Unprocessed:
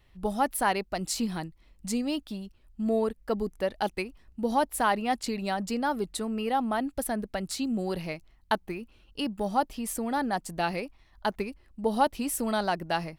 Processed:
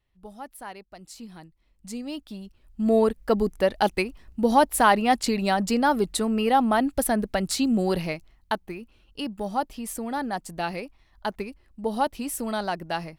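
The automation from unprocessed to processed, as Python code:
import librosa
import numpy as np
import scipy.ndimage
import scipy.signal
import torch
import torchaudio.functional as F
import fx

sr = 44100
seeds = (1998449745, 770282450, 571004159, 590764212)

y = fx.gain(x, sr, db=fx.line((1.08, -13.5), (2.31, -2.0), (2.99, 7.0), (7.96, 7.0), (8.55, -0.5)))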